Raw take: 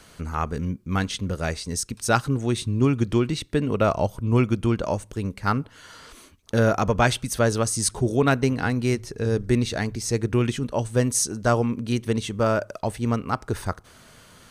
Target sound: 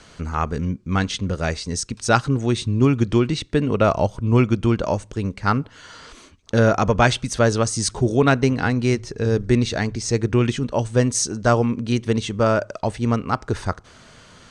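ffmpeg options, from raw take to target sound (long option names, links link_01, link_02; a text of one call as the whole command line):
ffmpeg -i in.wav -af "lowpass=frequency=7700:width=0.5412,lowpass=frequency=7700:width=1.3066,volume=3.5dB" out.wav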